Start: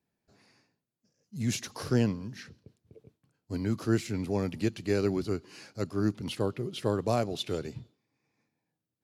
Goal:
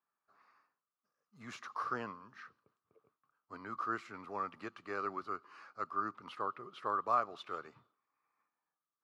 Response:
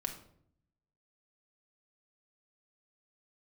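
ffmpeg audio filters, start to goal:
-af "bandpass=f=1.2k:t=q:w=10:csg=0,volume=13.5dB"

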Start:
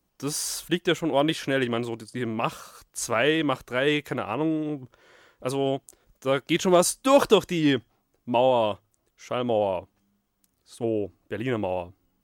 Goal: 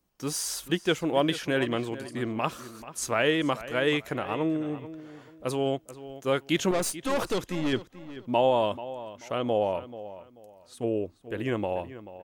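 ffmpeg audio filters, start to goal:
-filter_complex "[0:a]asettb=1/sr,asplit=3[a][b][c];[a]atrim=end=6.714[d];[b]atrim=start=6.71:end=7.73,asetpts=PTS-STARTPTS,afade=t=in:d=0.004:c=qsin,afade=t=out:st=1.016:d=0.004:c=qsin,aeval=exprs='(tanh(12.6*val(0)+0.55)-tanh(0.55))/12.6':c=same[e];[c]atrim=start=7.726[f];[d][e]acrossfade=d=0.004:c1=hsin:c2=qsin[g];[g][f]acrossfade=d=0.004:c1=qsin:c2=hsin,asplit=2[h][i];[i]adelay=436,lowpass=f=3.7k:p=1,volume=-14.5dB,asplit=2[j][k];[k]adelay=436,lowpass=f=3.7k:p=1,volume=0.28,asplit=2[l][m];[m]adelay=436,lowpass=f=3.7k:p=1,volume=0.28[n];[j][l][n]amix=inputs=3:normalize=0[o];[h][o]amix=inputs=2:normalize=0,volume=-2dB"

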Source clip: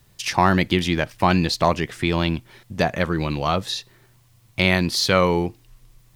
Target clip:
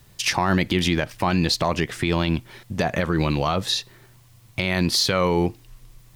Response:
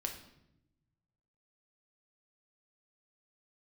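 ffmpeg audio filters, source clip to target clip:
-af "alimiter=limit=-14dB:level=0:latency=1:release=88,volume=4dB"

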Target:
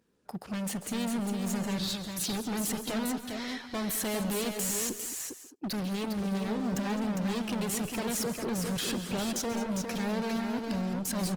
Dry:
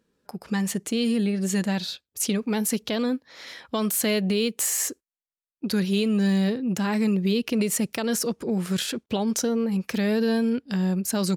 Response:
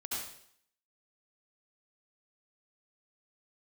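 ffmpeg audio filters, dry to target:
-filter_complex "[0:a]highpass=41,asoftclip=type=hard:threshold=-31dB,aecho=1:1:404:0.531,asplit=2[a][b];[1:a]atrim=start_sample=2205,atrim=end_sample=3528,adelay=138[c];[b][c]afir=irnorm=-1:irlink=0,volume=-9dB[d];[a][d]amix=inputs=2:normalize=0" -ar 48000 -c:a libopus -b:a 20k

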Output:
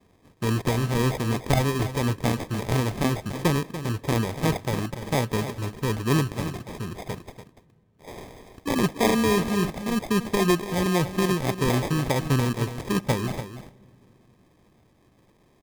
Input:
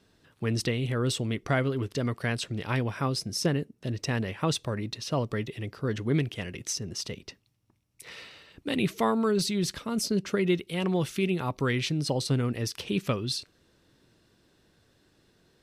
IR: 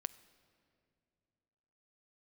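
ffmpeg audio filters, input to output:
-filter_complex "[0:a]lowpass=f=4.3k:w=0.5412,lowpass=f=4.3k:w=1.3066,equalizer=f=1.8k:t=o:w=0.77:g=3,acrusher=samples=31:mix=1:aa=0.000001,aecho=1:1:289:0.266,asplit=2[a][b];[1:a]atrim=start_sample=2205,asetrate=31752,aresample=44100[c];[b][c]afir=irnorm=-1:irlink=0,volume=-4.5dB[d];[a][d]amix=inputs=2:normalize=0"

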